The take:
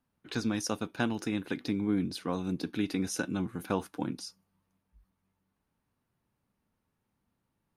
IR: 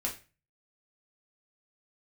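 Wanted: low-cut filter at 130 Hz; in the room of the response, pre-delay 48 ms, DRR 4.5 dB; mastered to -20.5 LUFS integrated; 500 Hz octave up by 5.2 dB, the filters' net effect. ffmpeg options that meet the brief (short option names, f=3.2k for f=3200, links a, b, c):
-filter_complex "[0:a]highpass=130,equalizer=f=500:t=o:g=6.5,asplit=2[a][b];[1:a]atrim=start_sample=2205,adelay=48[c];[b][c]afir=irnorm=-1:irlink=0,volume=-8dB[d];[a][d]amix=inputs=2:normalize=0,volume=10dB"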